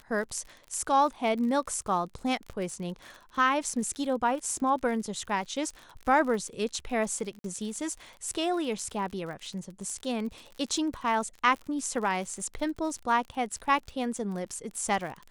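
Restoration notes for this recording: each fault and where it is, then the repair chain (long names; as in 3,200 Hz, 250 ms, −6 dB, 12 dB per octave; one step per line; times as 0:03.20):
surface crackle 50 per second −37 dBFS
0:07.39–0:07.44: drop-out 52 ms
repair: click removal
repair the gap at 0:07.39, 52 ms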